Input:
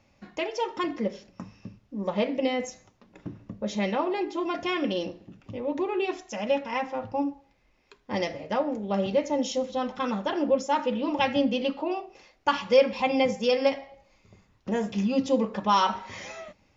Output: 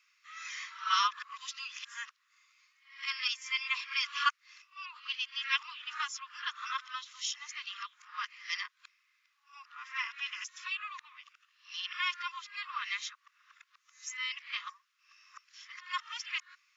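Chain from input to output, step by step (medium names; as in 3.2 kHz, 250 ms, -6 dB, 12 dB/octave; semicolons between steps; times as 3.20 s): reverse the whole clip; steep high-pass 1.1 kHz 96 dB/octave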